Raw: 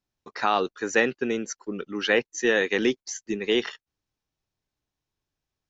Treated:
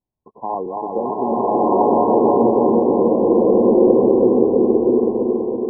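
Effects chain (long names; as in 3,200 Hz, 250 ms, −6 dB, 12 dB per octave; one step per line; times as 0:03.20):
feedback delay that plays each chunk backwards 164 ms, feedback 81%, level −2.5 dB
linear-phase brick-wall low-pass 1,100 Hz
slow-attack reverb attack 1,330 ms, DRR −10 dB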